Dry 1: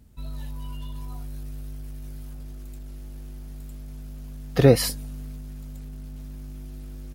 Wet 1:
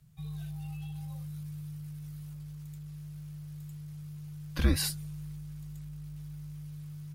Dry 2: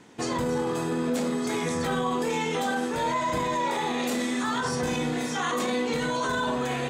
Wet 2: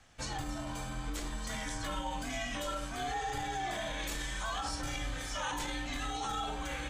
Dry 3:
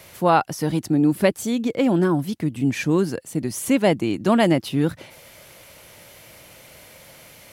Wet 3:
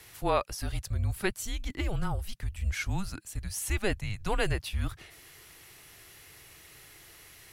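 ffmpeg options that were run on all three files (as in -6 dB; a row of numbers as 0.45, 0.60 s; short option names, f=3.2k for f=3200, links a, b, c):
-af "equalizer=f=430:t=o:w=2.1:g=-9,afreqshift=-200,volume=-5dB"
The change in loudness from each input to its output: -12.5, -10.0, -12.0 LU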